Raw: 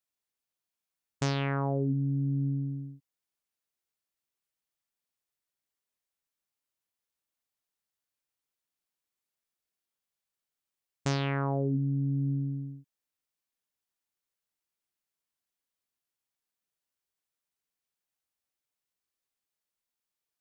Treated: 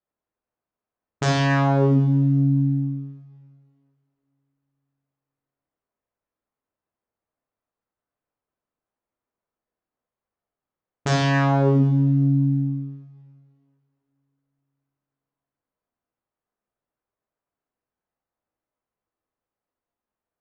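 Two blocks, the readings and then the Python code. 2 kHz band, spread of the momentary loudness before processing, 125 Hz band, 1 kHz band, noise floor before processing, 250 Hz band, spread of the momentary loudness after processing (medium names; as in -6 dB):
+12.5 dB, 10 LU, +10.5 dB, +12.0 dB, under -85 dBFS, +11.5 dB, 12 LU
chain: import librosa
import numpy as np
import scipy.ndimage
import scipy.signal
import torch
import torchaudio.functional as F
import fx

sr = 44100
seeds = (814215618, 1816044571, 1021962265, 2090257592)

y = fx.env_lowpass(x, sr, base_hz=1100.0, full_db=-28.5)
y = fx.rev_double_slope(y, sr, seeds[0], early_s=0.99, late_s=2.9, knee_db=-21, drr_db=-3.0)
y = F.gain(torch.from_numpy(y), 6.0).numpy()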